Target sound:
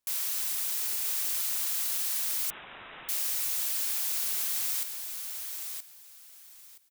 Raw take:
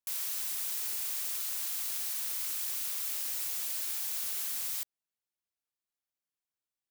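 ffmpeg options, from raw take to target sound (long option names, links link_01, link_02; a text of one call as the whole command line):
ffmpeg -i in.wav -filter_complex "[0:a]asplit=2[link_01][link_02];[link_02]alimiter=level_in=9.5dB:limit=-24dB:level=0:latency=1,volume=-9.5dB,volume=2.5dB[link_03];[link_01][link_03]amix=inputs=2:normalize=0,aecho=1:1:973|1946|2919:0.473|0.0946|0.0189,asettb=1/sr,asplit=3[link_04][link_05][link_06];[link_04]atrim=end=2.504[link_07];[link_05]atrim=start=2.5:end=3.09,asetpts=PTS-STARTPTS,afade=type=in:duration=0.004:curve=qsin,afade=type=out:start_time=0.586:duration=0.004:curve=qsin,lowpass=frequency=3400:width_type=q:width=0.5098,lowpass=frequency=3400:width_type=q:width=0.6013,lowpass=frequency=3400:width_type=q:width=0.9,lowpass=frequency=3400:width_type=q:width=2.563,afreqshift=-4000[link_08];[link_06]atrim=start=3.086[link_09];[link_07][link_08]acrossfade=duration=0.004:curve1=hsin:curve2=qsin[link_10];[link_10][link_09]acrossfade=duration=0.004:curve1=qsin:curve2=hsin" out.wav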